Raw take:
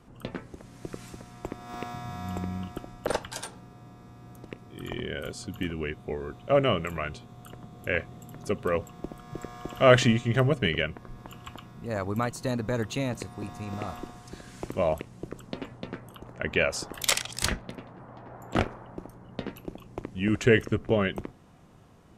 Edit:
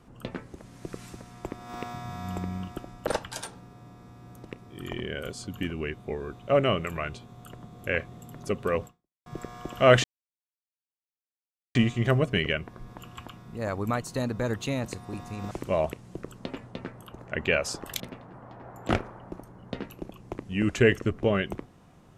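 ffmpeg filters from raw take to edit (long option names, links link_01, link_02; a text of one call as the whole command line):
ffmpeg -i in.wav -filter_complex "[0:a]asplit=5[link_01][link_02][link_03][link_04][link_05];[link_01]atrim=end=9.26,asetpts=PTS-STARTPTS,afade=type=out:start_time=8.86:duration=0.4:curve=exp[link_06];[link_02]atrim=start=9.26:end=10.04,asetpts=PTS-STARTPTS,afade=type=in:duration=0.004:curve=hsin,afade=type=out:start_time=0.776:duration=0.004:curve=hsin,apad=pad_dur=1.71[link_07];[link_03]atrim=start=10.04:end=13.802,asetpts=PTS-STARTPTS,afade=type=in:duration=0.004:curve=hsin[link_08];[link_04]atrim=start=14.588:end=17.082[link_09];[link_05]atrim=start=17.658[link_10];[link_06][link_07][link_08]concat=n=3:v=0:a=1[link_11];[link_11][link_09]acrossfade=duration=0.004:curve1=hsin:curve2=hsin[link_12];[link_12][link_10]acrossfade=duration=0.004:curve1=hsin:curve2=hsin" out.wav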